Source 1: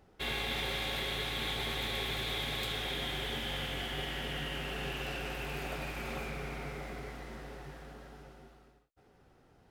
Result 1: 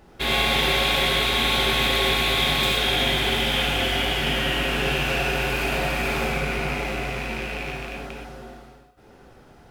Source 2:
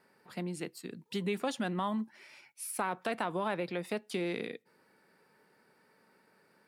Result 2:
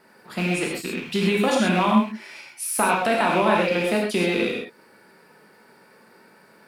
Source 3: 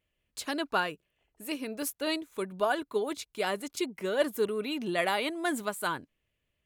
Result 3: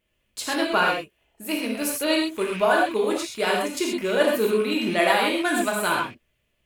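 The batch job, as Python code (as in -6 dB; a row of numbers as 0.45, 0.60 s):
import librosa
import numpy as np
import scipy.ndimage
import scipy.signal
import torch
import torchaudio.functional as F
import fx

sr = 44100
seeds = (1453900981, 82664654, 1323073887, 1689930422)

y = fx.rattle_buzz(x, sr, strikes_db=-46.0, level_db=-32.0)
y = fx.rev_gated(y, sr, seeds[0], gate_ms=150, shape='flat', drr_db=-2.0)
y = y * 10.0 ** (-24 / 20.0) / np.sqrt(np.mean(np.square(y)))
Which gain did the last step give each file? +10.5, +10.0, +5.0 dB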